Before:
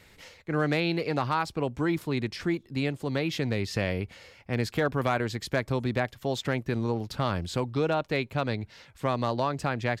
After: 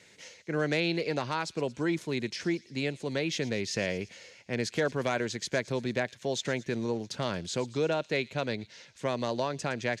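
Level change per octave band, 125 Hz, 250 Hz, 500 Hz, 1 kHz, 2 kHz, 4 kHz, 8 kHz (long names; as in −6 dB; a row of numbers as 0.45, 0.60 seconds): −6.5, −3.0, −1.0, −5.5, −1.0, +0.5, +5.0 decibels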